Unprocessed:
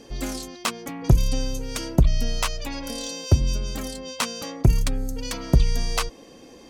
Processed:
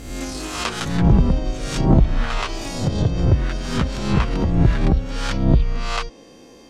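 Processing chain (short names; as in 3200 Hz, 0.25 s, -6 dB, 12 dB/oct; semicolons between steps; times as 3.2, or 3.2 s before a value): spectral swells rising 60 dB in 0.82 s; echoes that change speed 0.262 s, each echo +3 st, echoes 2; treble ducked by the level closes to 2400 Hz, closed at -13.5 dBFS; gain -1 dB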